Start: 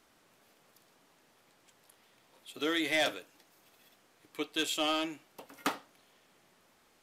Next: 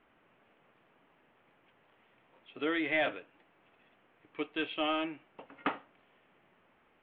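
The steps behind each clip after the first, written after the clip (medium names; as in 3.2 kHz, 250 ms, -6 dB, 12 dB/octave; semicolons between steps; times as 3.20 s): steep low-pass 3 kHz 48 dB/octave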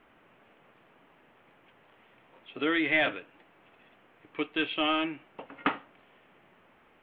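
dynamic bell 610 Hz, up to -5 dB, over -44 dBFS, Q 1; trim +6.5 dB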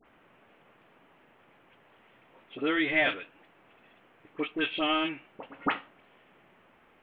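phase dispersion highs, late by 56 ms, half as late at 1.6 kHz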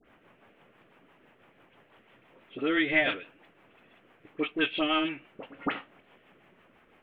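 rotary cabinet horn 6 Hz; trim +3 dB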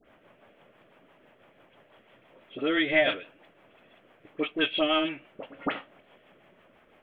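small resonant body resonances 600/3300 Hz, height 7 dB, ringing for 20 ms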